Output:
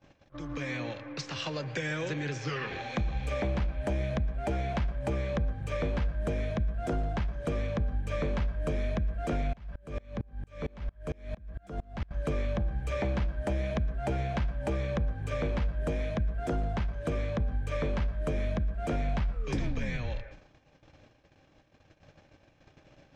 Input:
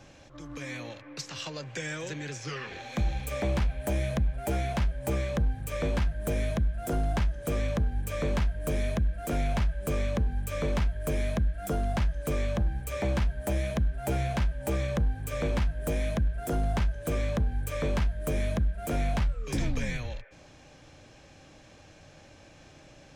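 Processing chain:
high-frequency loss of the air 130 metres
noise gate −51 dBFS, range −26 dB
downward compressor 4 to 1, threshold −33 dBFS, peak gain reduction 9 dB
convolution reverb RT60 0.30 s, pre-delay 107 ms, DRR 15.5 dB
0:09.53–0:12.11: tremolo with a ramp in dB swelling 4.4 Hz, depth 30 dB
level +4.5 dB

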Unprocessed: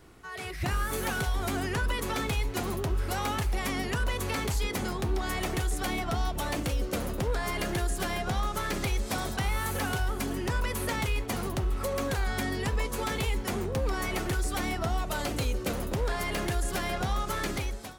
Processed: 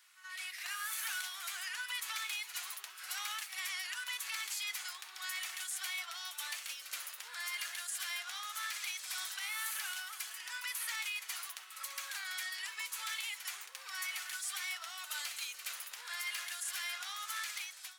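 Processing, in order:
Bessel high-pass filter 2,100 Hz, order 4
echo ahead of the sound 75 ms −12 dB
brickwall limiter −28 dBFS, peak gain reduction 6.5 dB

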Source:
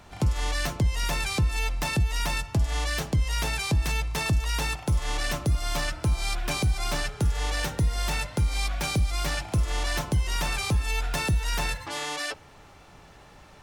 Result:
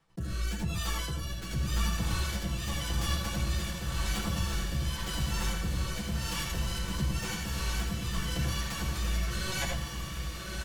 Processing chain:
speed change +28%
comb filter 6 ms, depth 75%
reversed playback
downward compressor 10 to 1, threshold −33 dBFS, peak gain reduction 16.5 dB
reversed playback
multi-voice chorus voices 2, 1.5 Hz, delay 13 ms, depth 3 ms
noise gate −48 dBFS, range −54 dB
rotating-speaker cabinet horn 0.9 Hz
feedback delay with all-pass diffusion 1,253 ms, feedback 42%, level −3 dB
convolution reverb RT60 0.25 s, pre-delay 69 ms, DRR 3 dB
background raised ahead of every attack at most 150 dB per second
level +5 dB

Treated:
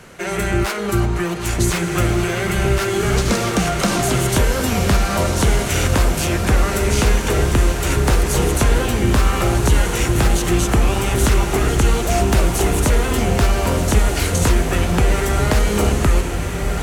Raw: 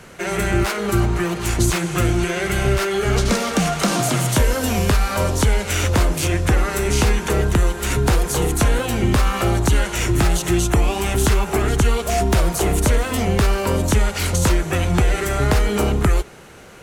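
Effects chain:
feedback delay with all-pass diffusion 1,504 ms, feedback 48%, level −5 dB

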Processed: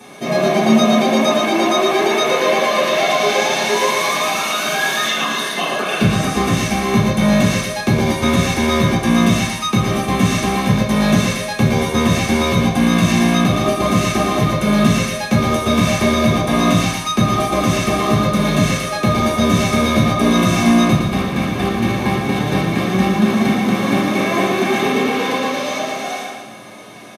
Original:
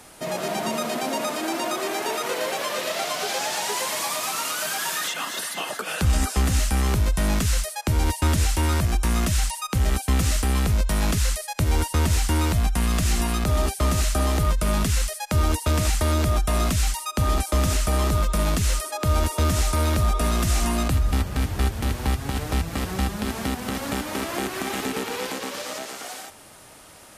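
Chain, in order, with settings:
low-shelf EQ 280 Hz −9 dB
in parallel at −12 dB: soft clipping −24.5 dBFS, distortion −14 dB
on the sum: repeating echo 114 ms, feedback 42%, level −6 dB
convolution reverb RT60 0.60 s, pre-delay 3 ms, DRR −9 dB
level −4.5 dB

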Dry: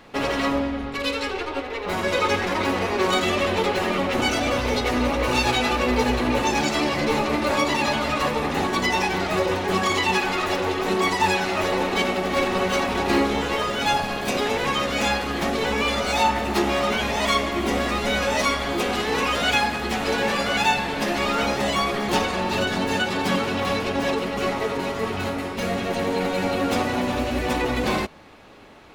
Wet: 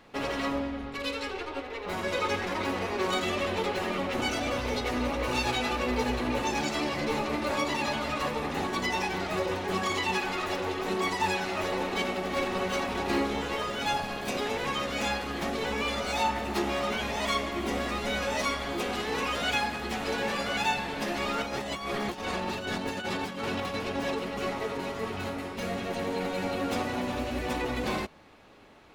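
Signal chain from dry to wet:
0:21.42–0:23.74: compressor whose output falls as the input rises −25 dBFS, ratio −0.5
level −7.5 dB

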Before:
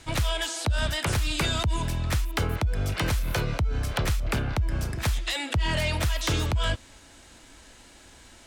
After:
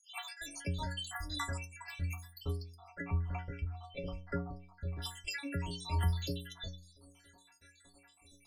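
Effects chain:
time-frequency cells dropped at random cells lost 77%
0:02.74–0:05.02: low-pass filter 1,900 Hz 12 dB per octave
stiff-string resonator 84 Hz, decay 0.66 s, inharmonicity 0.03
level +6.5 dB

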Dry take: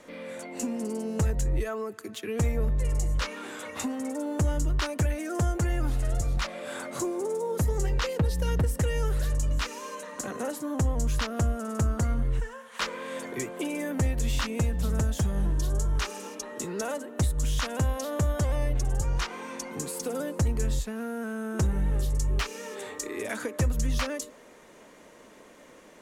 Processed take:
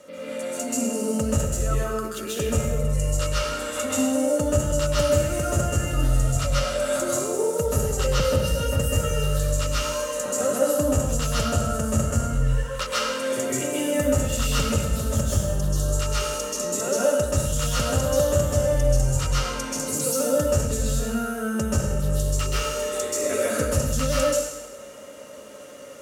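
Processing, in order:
high-pass filter 55 Hz
bass and treble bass +6 dB, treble +10 dB
downward compressor, threshold −22 dBFS, peak gain reduction 6.5 dB
hollow resonant body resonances 560/1,300/2,800 Hz, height 17 dB, ringing for 65 ms
convolution reverb RT60 1.1 s, pre-delay 127 ms, DRR −7 dB
level −5 dB

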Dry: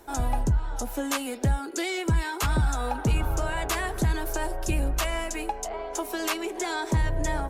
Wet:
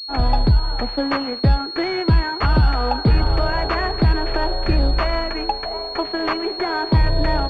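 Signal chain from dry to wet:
downward expander −29 dBFS
on a send: feedback echo with a high-pass in the loop 116 ms, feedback 72%, high-pass 420 Hz, level −22.5 dB
on the sum: switching amplifier with a slow clock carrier 4,300 Hz
level +8.5 dB

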